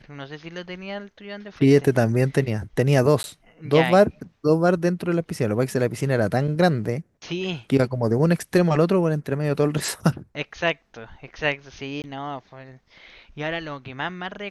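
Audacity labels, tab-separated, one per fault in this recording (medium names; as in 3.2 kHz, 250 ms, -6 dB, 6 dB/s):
3.230000	3.240000	dropout 11 ms
12.020000	12.040000	dropout 19 ms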